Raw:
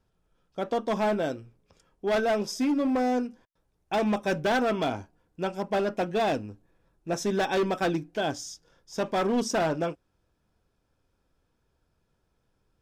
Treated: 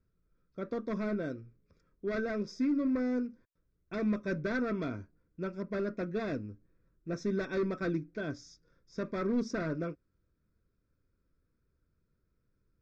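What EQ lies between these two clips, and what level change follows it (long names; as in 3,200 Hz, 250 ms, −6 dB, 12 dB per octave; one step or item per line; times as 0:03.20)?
head-to-tape spacing loss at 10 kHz 21 dB
notch filter 1,700 Hz, Q 13
phaser with its sweep stopped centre 3,000 Hz, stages 6
−2.0 dB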